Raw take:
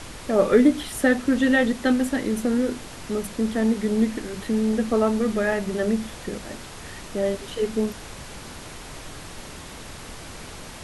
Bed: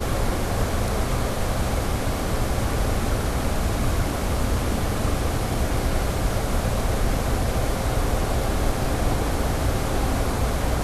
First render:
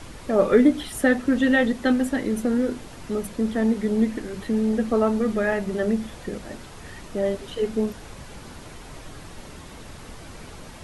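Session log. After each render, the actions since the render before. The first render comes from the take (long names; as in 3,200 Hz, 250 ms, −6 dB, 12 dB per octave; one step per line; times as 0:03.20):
broadband denoise 6 dB, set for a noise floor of −40 dBFS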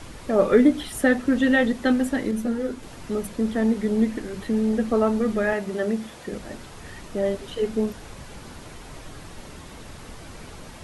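0:02.31–0:02.83: string-ensemble chorus
0:05.53–0:06.32: high-pass filter 200 Hz 6 dB per octave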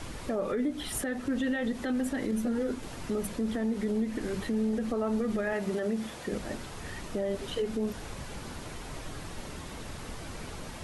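downward compressor 10 to 1, threshold −23 dBFS, peak gain reduction 12.5 dB
brickwall limiter −22.5 dBFS, peak gain reduction 9.5 dB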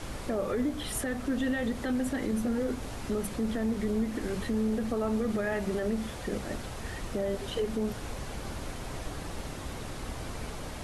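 mix in bed −19 dB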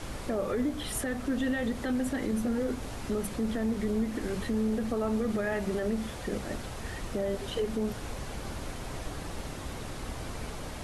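no processing that can be heard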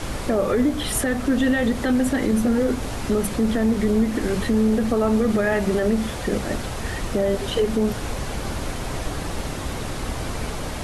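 level +10 dB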